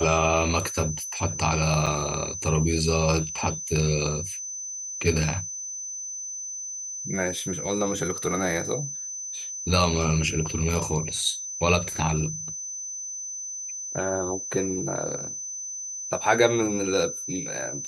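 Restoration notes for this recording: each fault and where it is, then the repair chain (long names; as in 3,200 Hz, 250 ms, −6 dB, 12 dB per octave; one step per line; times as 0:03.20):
whistle 6,100 Hz −32 dBFS
0:01.86–0:01.87: drop-out 6.3 ms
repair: notch filter 6,100 Hz, Q 30
repair the gap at 0:01.86, 6.3 ms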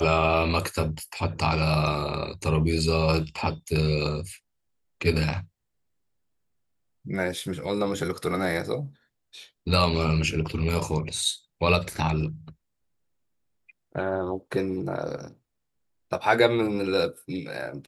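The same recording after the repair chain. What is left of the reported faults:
none of them is left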